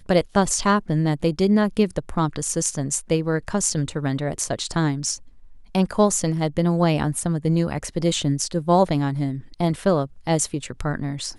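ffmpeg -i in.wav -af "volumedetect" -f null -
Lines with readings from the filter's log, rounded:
mean_volume: -22.1 dB
max_volume: -5.2 dB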